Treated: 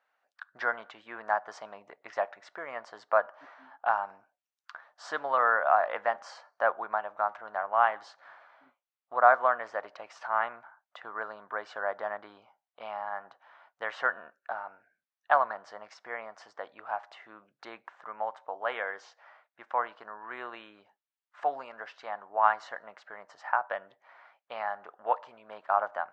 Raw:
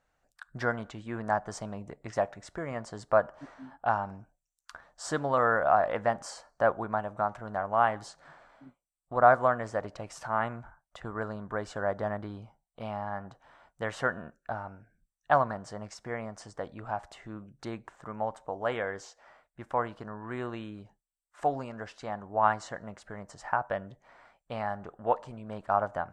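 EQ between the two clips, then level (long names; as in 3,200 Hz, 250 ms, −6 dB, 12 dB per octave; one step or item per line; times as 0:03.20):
high-pass filter 830 Hz 12 dB per octave
high-frequency loss of the air 220 metres
+4.5 dB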